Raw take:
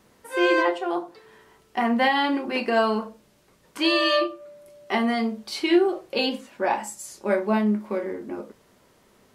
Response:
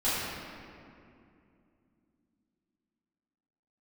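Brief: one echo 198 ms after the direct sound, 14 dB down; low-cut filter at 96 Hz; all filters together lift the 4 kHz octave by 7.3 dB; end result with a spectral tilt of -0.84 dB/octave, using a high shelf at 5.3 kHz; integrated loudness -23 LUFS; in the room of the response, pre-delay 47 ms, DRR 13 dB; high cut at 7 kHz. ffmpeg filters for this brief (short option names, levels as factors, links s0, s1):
-filter_complex "[0:a]highpass=96,lowpass=7000,equalizer=f=4000:t=o:g=7,highshelf=f=5300:g=7.5,aecho=1:1:198:0.2,asplit=2[s0][s1];[1:a]atrim=start_sample=2205,adelay=47[s2];[s1][s2]afir=irnorm=-1:irlink=0,volume=0.0596[s3];[s0][s3]amix=inputs=2:normalize=0,volume=0.841"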